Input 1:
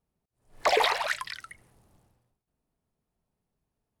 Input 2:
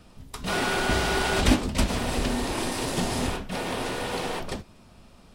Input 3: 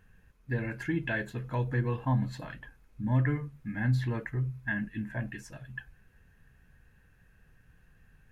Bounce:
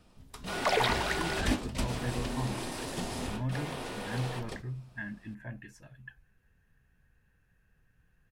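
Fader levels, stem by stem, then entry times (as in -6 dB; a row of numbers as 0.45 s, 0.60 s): -4.5 dB, -9.0 dB, -7.5 dB; 0.00 s, 0.00 s, 0.30 s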